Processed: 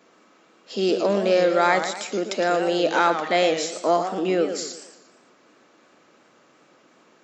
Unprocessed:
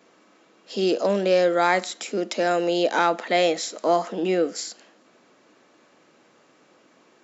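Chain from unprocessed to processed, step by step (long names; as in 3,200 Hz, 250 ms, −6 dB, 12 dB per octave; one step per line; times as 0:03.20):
parametric band 1,300 Hz +3 dB 0.39 octaves
feedback echo with a swinging delay time 116 ms, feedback 43%, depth 166 cents, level −9 dB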